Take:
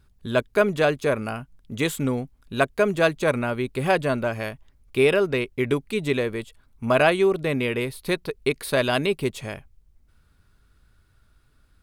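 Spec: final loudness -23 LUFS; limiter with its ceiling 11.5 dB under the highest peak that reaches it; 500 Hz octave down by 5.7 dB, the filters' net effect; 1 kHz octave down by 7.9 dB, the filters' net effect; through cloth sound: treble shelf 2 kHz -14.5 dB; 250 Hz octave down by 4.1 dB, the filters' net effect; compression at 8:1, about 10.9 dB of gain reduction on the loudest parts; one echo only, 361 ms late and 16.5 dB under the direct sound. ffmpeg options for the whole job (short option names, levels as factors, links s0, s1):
-af "equalizer=f=250:t=o:g=-3.5,equalizer=f=500:t=o:g=-3.5,equalizer=f=1000:t=o:g=-6,acompressor=threshold=0.0316:ratio=8,alimiter=level_in=1.68:limit=0.0631:level=0:latency=1,volume=0.596,highshelf=f=2000:g=-14.5,aecho=1:1:361:0.15,volume=7.94"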